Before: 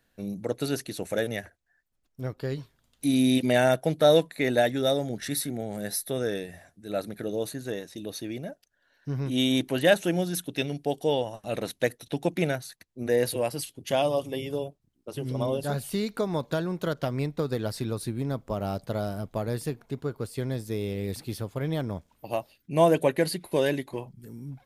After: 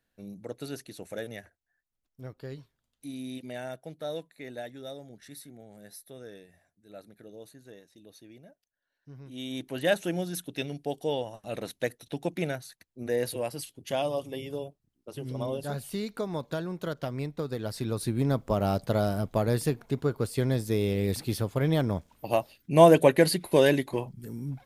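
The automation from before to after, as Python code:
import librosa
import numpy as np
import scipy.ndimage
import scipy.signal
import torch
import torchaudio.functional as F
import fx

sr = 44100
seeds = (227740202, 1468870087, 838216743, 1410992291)

y = fx.gain(x, sr, db=fx.line((2.56, -9.0), (3.17, -16.5), (9.28, -16.5), (9.91, -4.5), (17.58, -4.5), (18.22, 4.0)))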